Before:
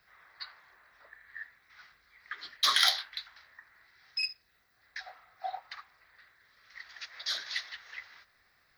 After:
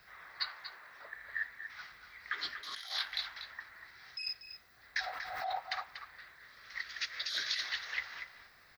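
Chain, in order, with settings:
0:00.48–0:01.16: high-pass filter 310 Hz → 98 Hz 6 dB per octave
0:06.81–0:07.64: parametric band 830 Hz −11.5 dB 0.8 octaves
compressor whose output falls as the input rises −39 dBFS, ratio −1
slap from a distant wall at 41 metres, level −8 dB
0:04.97–0:05.56: background raised ahead of every attack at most 37 dB per second
level +1 dB

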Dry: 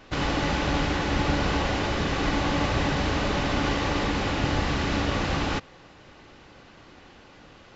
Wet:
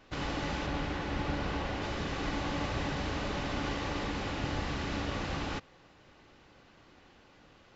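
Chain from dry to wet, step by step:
0:00.66–0:01.82: high-shelf EQ 6,000 Hz −9 dB
level −9 dB

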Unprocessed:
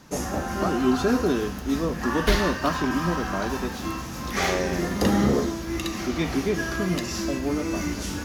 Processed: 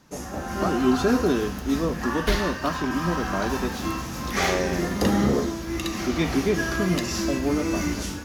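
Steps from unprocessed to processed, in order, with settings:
automatic gain control gain up to 9 dB
level −6.5 dB

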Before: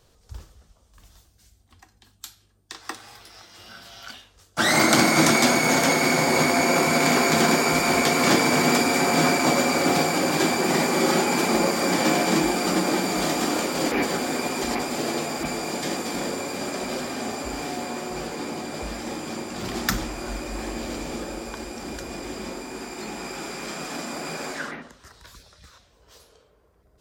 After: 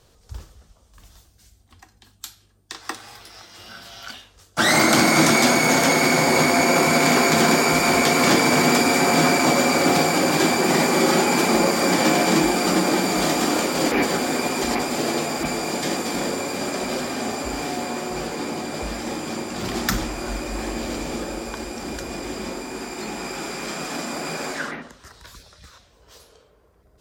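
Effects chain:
in parallel at −2.5 dB: brickwall limiter −12 dBFS, peak gain reduction 10 dB
on the sum: asymmetric clip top −7.5 dBFS
level −1.5 dB

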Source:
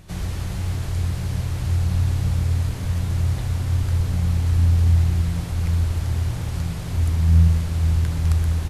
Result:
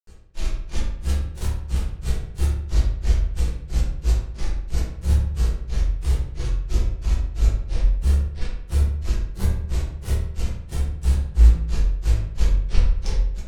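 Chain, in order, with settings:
lower of the sound and its delayed copy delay 1.8 ms
high-shelf EQ 7,500 Hz +9 dB
tuned comb filter 430 Hz, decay 0.75 s, mix 40%
in parallel at −8.5 dB: bit reduction 5 bits
on the sum: change of speed 0.645×
shaped tremolo triangle 7.2 Hz, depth 45%
granular cloud 178 ms, grains 3 per second, pitch spread up and down by 7 semitones
tape wow and flutter 20 cents
on a send: feedback echo with a low-pass in the loop 69 ms, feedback 54%, low-pass 3,700 Hz, level −9 dB
on the sum: rectangular room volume 43 cubic metres, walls mixed, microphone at 1 metre

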